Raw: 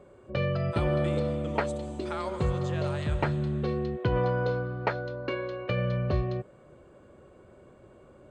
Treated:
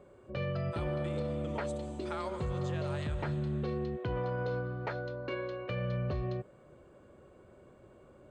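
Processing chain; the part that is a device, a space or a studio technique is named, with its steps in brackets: soft clipper into limiter (soft clip -16.5 dBFS, distortion -24 dB; limiter -23.5 dBFS, peak gain reduction 6 dB); gain -3.5 dB

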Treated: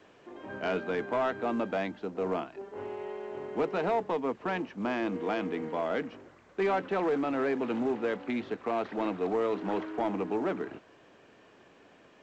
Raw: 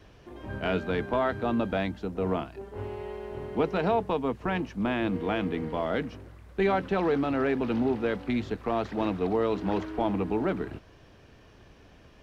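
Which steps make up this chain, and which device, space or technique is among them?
telephone (BPF 260–3100 Hz; soft clip -21 dBFS, distortion -18 dB; A-law 128 kbps 16000 Hz)

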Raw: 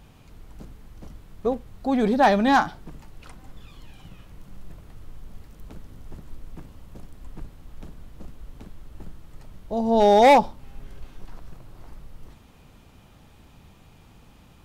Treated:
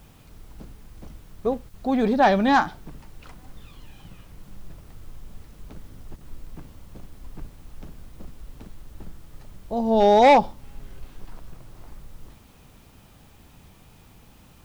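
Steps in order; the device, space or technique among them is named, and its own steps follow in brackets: worn cassette (LPF 6200 Hz; wow and flutter; level dips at 1.69/6.16, 46 ms -10 dB; white noise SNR 35 dB)

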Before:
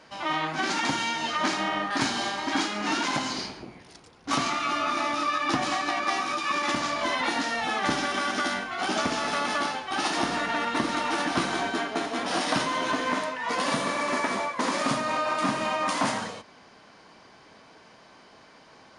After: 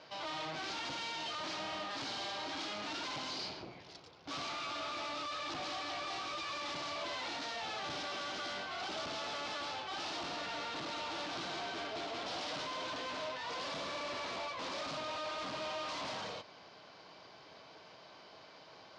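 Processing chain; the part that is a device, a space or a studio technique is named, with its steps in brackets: guitar amplifier (tube stage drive 39 dB, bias 0.6; tone controls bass 0 dB, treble +12 dB; speaker cabinet 75–4400 Hz, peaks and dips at 230 Hz -9 dB, 620 Hz +4 dB, 1800 Hz -4 dB); gain -1 dB

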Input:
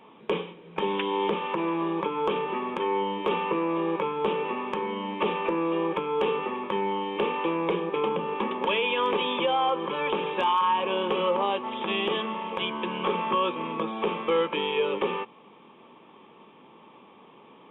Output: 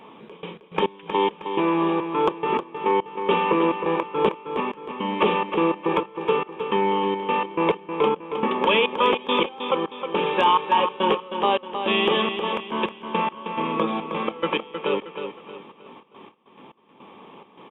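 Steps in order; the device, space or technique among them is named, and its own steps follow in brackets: trance gate with a delay (step gate "xx.x.x..x..x" 105 bpm -24 dB; feedback echo 0.314 s, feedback 38%, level -8 dB); gain +6.5 dB

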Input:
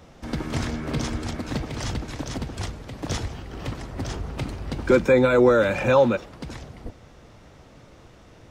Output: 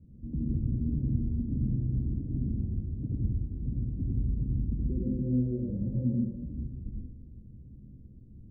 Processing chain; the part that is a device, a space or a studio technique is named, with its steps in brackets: 1.56–3.06 doubler 49 ms -4 dB; club heard from the street (limiter -17.5 dBFS, peak gain reduction 10.5 dB; LPF 250 Hz 24 dB/oct; reverb RT60 0.85 s, pre-delay 79 ms, DRR -2.5 dB); gain -3 dB

